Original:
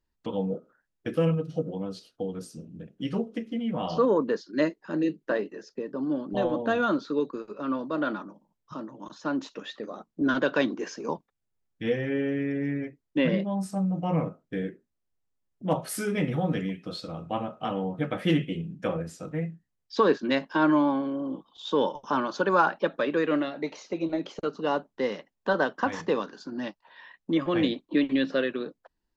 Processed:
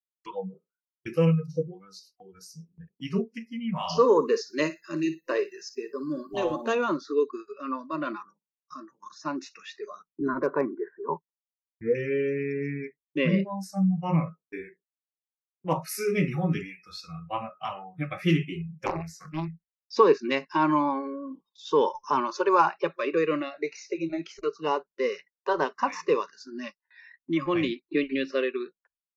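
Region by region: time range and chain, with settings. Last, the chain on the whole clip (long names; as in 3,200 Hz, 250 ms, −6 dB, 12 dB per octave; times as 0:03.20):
0:03.75–0:06.75: high-shelf EQ 4,000 Hz +12 dB + flutter between parallel walls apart 10.1 metres, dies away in 0.27 s
0:10.28–0:11.95: bad sample-rate conversion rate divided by 8×, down filtered, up hold + low-pass filter 1,600 Hz 24 dB per octave + hard clipping −14 dBFS
0:18.86–0:19.48: high-pass filter 230 Hz 6 dB per octave + low-shelf EQ 460 Hz +5.5 dB + highs frequency-modulated by the lows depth 0.82 ms
whole clip: noise reduction from a noise print of the clip's start 25 dB; noise gate with hold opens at −51 dBFS; EQ curve with evenly spaced ripples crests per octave 0.8, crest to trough 10 dB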